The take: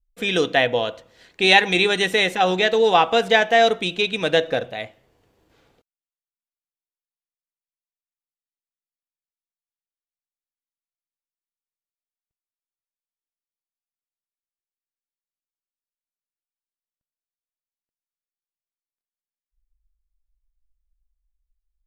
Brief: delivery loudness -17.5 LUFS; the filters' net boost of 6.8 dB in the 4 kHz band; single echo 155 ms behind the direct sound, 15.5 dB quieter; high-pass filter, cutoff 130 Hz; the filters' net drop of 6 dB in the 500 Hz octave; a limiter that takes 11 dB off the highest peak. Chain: high-pass 130 Hz; peaking EQ 500 Hz -8 dB; peaking EQ 4 kHz +8 dB; peak limiter -7.5 dBFS; delay 155 ms -15.5 dB; trim +2 dB

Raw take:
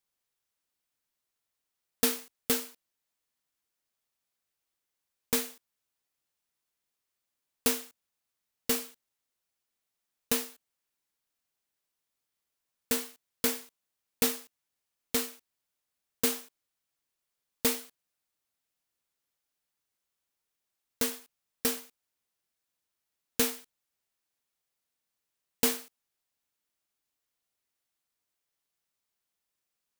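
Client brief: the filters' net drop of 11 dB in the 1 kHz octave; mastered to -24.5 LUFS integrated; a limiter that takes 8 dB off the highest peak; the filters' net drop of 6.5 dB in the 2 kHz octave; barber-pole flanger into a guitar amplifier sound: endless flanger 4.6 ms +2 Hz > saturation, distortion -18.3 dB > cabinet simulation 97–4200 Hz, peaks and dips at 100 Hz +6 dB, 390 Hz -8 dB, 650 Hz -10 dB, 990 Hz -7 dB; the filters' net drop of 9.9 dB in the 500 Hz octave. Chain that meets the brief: peaking EQ 500 Hz -4.5 dB; peaking EQ 1 kHz -6 dB; peaking EQ 2 kHz -6 dB; peak limiter -19.5 dBFS; endless flanger 4.6 ms +2 Hz; saturation -27 dBFS; cabinet simulation 97–4200 Hz, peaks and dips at 100 Hz +6 dB, 390 Hz -8 dB, 650 Hz -10 dB, 990 Hz -7 dB; trim +24.5 dB

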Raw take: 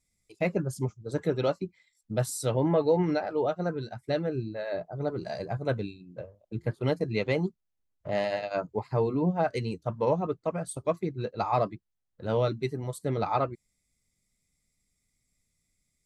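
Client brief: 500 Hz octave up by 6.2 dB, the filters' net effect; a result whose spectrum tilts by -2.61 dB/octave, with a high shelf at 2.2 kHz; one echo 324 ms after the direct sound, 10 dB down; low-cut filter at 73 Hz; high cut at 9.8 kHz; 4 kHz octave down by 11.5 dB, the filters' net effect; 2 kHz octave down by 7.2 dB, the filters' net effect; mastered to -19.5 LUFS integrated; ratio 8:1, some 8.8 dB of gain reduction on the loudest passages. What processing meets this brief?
high-pass 73 Hz; low-pass 9.8 kHz; peaking EQ 500 Hz +8 dB; peaking EQ 2 kHz -5 dB; treble shelf 2.2 kHz -6 dB; peaking EQ 4 kHz -7 dB; compression 8:1, threshold -22 dBFS; delay 324 ms -10 dB; trim +10 dB

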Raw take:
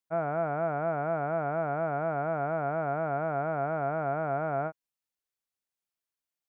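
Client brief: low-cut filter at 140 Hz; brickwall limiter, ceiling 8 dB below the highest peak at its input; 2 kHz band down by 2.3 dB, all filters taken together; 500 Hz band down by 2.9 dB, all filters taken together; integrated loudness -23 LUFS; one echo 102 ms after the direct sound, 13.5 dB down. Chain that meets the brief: high-pass 140 Hz; peaking EQ 500 Hz -4 dB; peaking EQ 2 kHz -3.5 dB; peak limiter -28.5 dBFS; delay 102 ms -13.5 dB; trim +16 dB

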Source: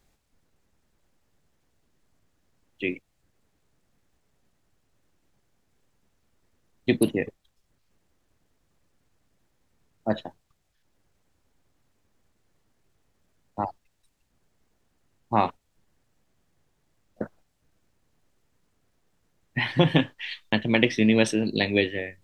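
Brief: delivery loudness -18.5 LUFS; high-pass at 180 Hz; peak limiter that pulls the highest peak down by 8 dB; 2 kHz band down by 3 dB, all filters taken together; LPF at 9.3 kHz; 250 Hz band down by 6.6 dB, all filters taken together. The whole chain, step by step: high-pass 180 Hz; low-pass 9.3 kHz; peaking EQ 250 Hz -7 dB; peaking EQ 2 kHz -3.5 dB; trim +13 dB; peak limiter -0.5 dBFS

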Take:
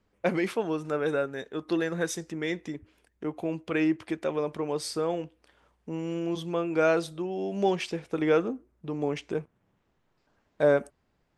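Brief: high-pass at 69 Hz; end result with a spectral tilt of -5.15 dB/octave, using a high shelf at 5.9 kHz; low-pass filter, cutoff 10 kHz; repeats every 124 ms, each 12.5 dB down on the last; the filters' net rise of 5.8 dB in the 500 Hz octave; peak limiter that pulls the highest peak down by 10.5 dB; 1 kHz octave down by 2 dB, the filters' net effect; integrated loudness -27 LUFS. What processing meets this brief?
high-pass 69 Hz; low-pass 10 kHz; peaking EQ 500 Hz +8.5 dB; peaking EQ 1 kHz -7 dB; treble shelf 5.9 kHz -8.5 dB; peak limiter -18.5 dBFS; feedback delay 124 ms, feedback 24%, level -12.5 dB; trim +1.5 dB

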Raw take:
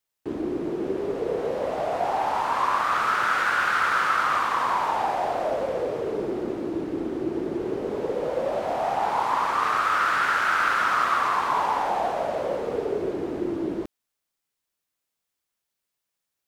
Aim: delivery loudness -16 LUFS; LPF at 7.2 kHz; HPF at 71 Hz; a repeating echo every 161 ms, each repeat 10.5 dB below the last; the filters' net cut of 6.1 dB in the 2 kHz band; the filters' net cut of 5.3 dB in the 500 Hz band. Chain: high-pass 71 Hz; low-pass 7.2 kHz; peaking EQ 500 Hz -6.5 dB; peaking EQ 2 kHz -8.5 dB; feedback delay 161 ms, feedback 30%, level -10.5 dB; trim +12.5 dB

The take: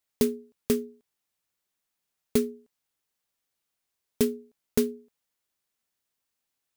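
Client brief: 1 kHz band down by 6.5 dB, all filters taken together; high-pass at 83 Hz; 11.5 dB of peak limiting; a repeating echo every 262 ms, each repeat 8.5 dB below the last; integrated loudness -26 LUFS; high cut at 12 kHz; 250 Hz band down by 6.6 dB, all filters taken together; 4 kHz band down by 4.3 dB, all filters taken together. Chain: high-pass 83 Hz; low-pass 12 kHz; peaking EQ 250 Hz -6.5 dB; peaking EQ 1 kHz -8.5 dB; peaking EQ 4 kHz -5 dB; peak limiter -25.5 dBFS; feedback delay 262 ms, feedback 38%, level -8.5 dB; trim +15 dB

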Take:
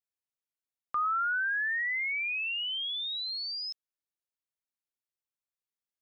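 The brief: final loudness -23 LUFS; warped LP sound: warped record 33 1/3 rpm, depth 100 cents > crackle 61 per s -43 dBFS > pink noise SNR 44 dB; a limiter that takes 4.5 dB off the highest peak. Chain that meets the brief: peak limiter -29.5 dBFS; warped record 33 1/3 rpm, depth 100 cents; crackle 61 per s -43 dBFS; pink noise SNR 44 dB; trim +8.5 dB

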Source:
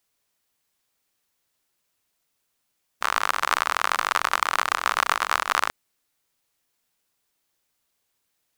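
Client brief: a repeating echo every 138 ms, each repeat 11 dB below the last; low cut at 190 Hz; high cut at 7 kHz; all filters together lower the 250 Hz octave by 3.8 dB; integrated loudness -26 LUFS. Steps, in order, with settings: high-pass 190 Hz; low-pass 7 kHz; peaking EQ 250 Hz -4 dB; feedback delay 138 ms, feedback 28%, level -11 dB; trim -2.5 dB

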